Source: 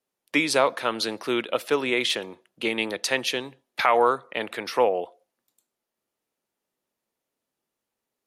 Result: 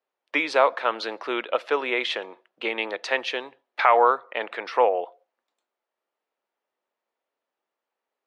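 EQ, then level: high-pass 610 Hz 12 dB/octave; tape spacing loss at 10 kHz 31 dB; +7.0 dB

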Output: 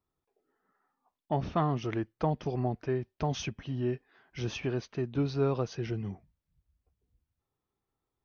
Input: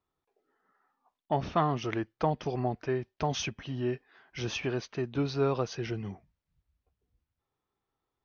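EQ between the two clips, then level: bass shelf 420 Hz +7 dB; -4.5 dB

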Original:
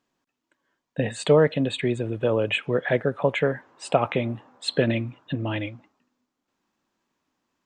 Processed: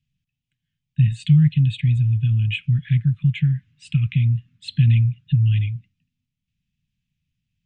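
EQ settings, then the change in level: Chebyshev band-stop 150–2600 Hz, order 3; tone controls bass +14 dB, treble -12 dB; band-stop 4.3 kHz, Q 28; +2.0 dB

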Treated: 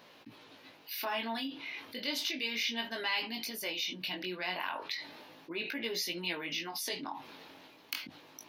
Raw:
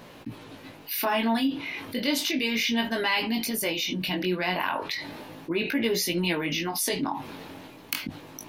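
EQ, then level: distance through air 300 m; tone controls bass 0 dB, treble +11 dB; RIAA curve recording; -8.0 dB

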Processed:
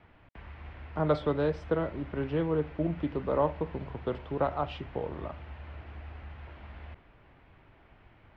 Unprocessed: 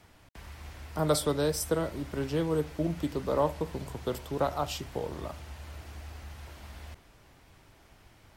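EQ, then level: low-pass 2.8 kHz 24 dB/octave; 0.0 dB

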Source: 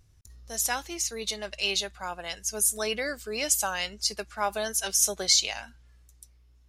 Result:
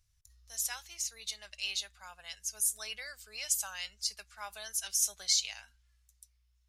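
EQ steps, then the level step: amplifier tone stack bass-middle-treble 10-0-10; -5.5 dB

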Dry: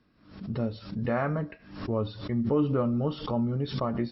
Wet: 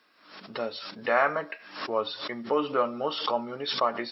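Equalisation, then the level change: high-pass 540 Hz 12 dB/octave; tilt shelf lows -4 dB, about 740 Hz; +7.5 dB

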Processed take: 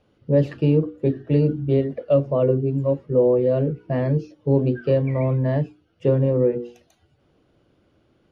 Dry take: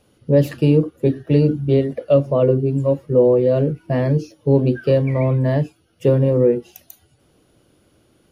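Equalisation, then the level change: low-pass 3.6 kHz 6 dB/octave; distance through air 78 m; hum notches 60/120/180/240/300/360/420/480 Hz; -3.0 dB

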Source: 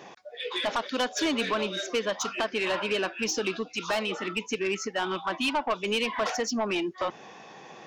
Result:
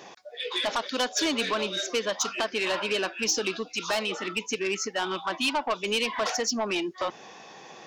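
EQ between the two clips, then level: tone controls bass -3 dB, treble +5 dB; peaking EQ 4.4 kHz +2 dB; 0.0 dB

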